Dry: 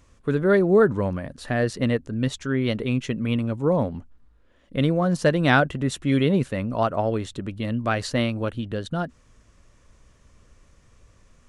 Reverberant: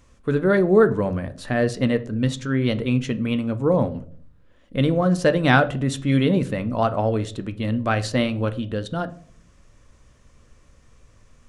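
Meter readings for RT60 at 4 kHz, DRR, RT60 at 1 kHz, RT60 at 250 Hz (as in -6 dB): 0.35 s, 10.0 dB, 0.45 s, 0.75 s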